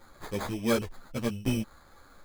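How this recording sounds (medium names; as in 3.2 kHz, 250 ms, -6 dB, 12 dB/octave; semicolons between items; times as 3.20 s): aliases and images of a low sample rate 2.8 kHz, jitter 0%; a shimmering, thickened sound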